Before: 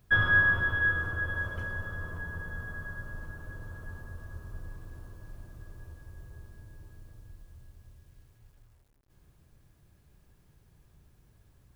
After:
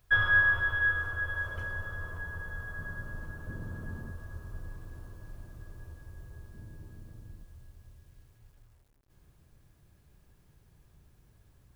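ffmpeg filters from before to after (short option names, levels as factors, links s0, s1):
-af "asetnsamples=n=441:p=0,asendcmd='1.48 equalizer g -7;2.79 equalizer g 2;3.47 equalizer g 10.5;4.11 equalizer g 0.5;6.54 equalizer g 8.5;7.44 equalizer g -0.5',equalizer=f=210:t=o:w=1.6:g=-14"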